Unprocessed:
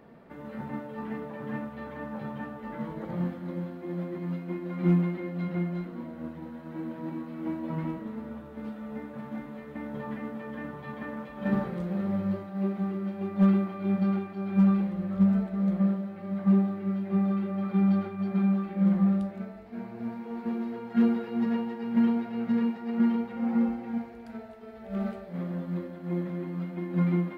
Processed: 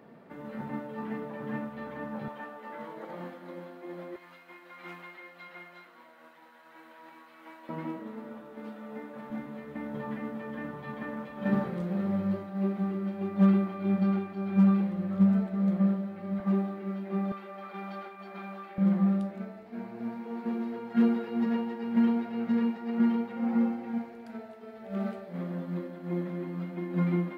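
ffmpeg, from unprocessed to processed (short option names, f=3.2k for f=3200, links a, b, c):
-af "asetnsamples=n=441:p=0,asendcmd='2.28 highpass f 430;4.16 highpass f 1100;7.69 highpass f 270;9.3 highpass f 96;16.4 highpass f 250;17.32 highpass f 630;18.78 highpass f 160',highpass=120"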